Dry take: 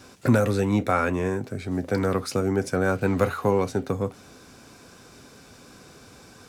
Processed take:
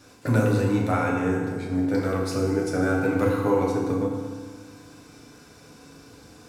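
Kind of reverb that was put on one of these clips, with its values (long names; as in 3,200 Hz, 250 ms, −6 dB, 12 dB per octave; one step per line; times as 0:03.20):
feedback delay network reverb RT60 1.6 s, low-frequency decay 1.2×, high-frequency decay 0.75×, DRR −2.5 dB
level −5.5 dB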